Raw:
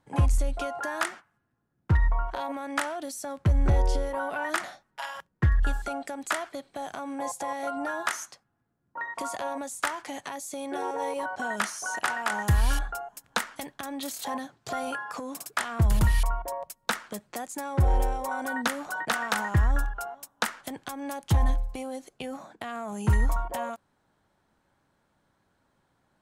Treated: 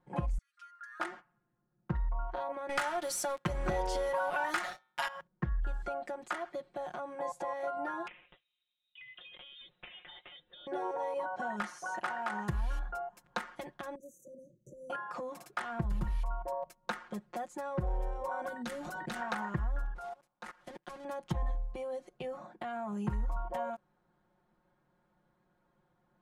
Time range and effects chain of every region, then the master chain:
0.38–1.00 s: peaking EQ 3.5 kHz -9.5 dB 1.1 oct + compression 4:1, threshold -32 dBFS + rippled Chebyshev high-pass 1.2 kHz, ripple 6 dB
2.69–5.08 s: tilt EQ +3.5 dB/octave + de-hum 128.3 Hz, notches 33 + waveshaping leveller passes 3
8.07–10.67 s: compression 4:1, threshold -40 dBFS + frequency inversion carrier 3.9 kHz
13.95–14.90 s: peaking EQ 410 Hz -7 dB 0.27 oct + compression 2:1, threshold -45 dBFS + brick-wall FIR band-stop 610–5800 Hz
18.48–19.21 s: peaking EQ 1 kHz -15 dB 2.6 oct + level flattener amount 70%
19.95–21.05 s: block-companded coder 3-bit + steep low-pass 12 kHz 48 dB/octave + level held to a coarse grid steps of 20 dB
whole clip: low-pass 1.4 kHz 6 dB/octave; comb 5.6 ms, depth 93%; compression 3:1, threshold -28 dBFS; trim -4.5 dB

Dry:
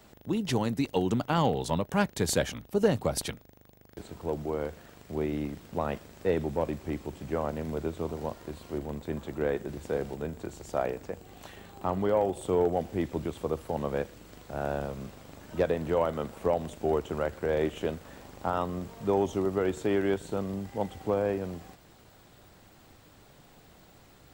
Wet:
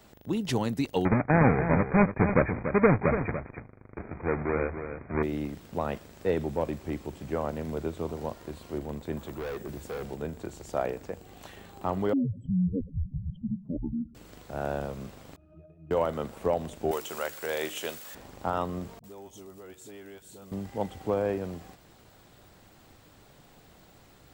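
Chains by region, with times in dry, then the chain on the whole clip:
1.05–5.23 s: square wave that keeps the level + brick-wall FIR low-pass 2.5 kHz + delay 288 ms -9 dB
9.17–10.05 s: treble shelf 12 kHz +9.5 dB + hard clipper -32 dBFS
12.13–14.15 s: spectral contrast enhancement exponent 3.5 + frequency shift -260 Hz + distance through air 420 m
15.36–15.91 s: compression 5:1, threshold -40 dBFS + pitch-class resonator D#, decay 0.2 s
16.91–18.15 s: tilt EQ +4.5 dB/octave + hum notches 50/100/150/200/250/300/350 Hz
18.99–20.52 s: pre-emphasis filter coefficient 0.8 + compression 2:1, threshold -46 dBFS + phase dispersion highs, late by 48 ms, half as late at 420 Hz
whole clip: none

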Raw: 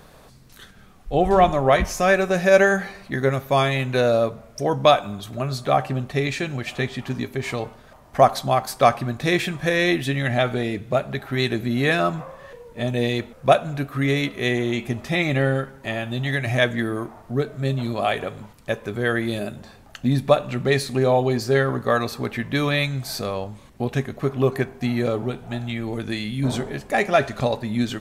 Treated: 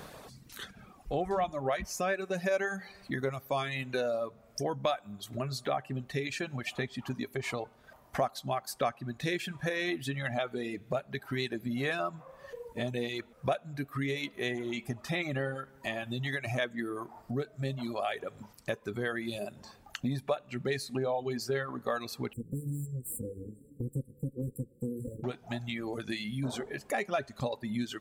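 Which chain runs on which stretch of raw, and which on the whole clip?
22.33–25.24 s: comb filter that takes the minimum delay 1.2 ms + brick-wall FIR band-stop 540–7300 Hz + repeats whose band climbs or falls 180 ms, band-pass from 2.9 kHz, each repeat -0.7 oct, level -3 dB
whole clip: reverb removal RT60 1.6 s; high-pass 110 Hz 6 dB/octave; compression 2.5:1, threshold -39 dBFS; trim +2.5 dB

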